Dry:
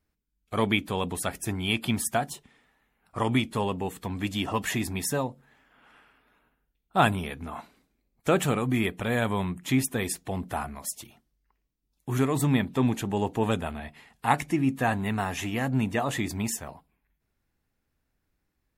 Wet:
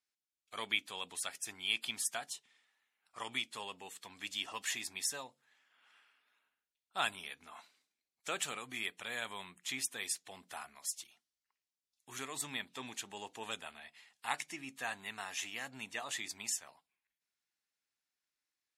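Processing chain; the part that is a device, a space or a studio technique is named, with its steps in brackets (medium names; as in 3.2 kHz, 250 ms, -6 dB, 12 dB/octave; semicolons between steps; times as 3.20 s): piezo pickup straight into a mixer (low-pass 5.9 kHz 12 dB/octave; differentiator); trim +3 dB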